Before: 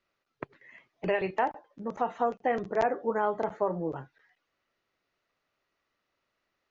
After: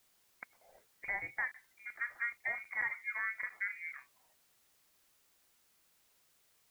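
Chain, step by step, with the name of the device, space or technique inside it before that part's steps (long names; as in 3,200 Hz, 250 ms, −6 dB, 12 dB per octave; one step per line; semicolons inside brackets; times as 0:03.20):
scrambled radio voice (band-pass filter 360–2,700 Hz; voice inversion scrambler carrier 2,600 Hz; white noise bed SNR 28 dB)
level −9 dB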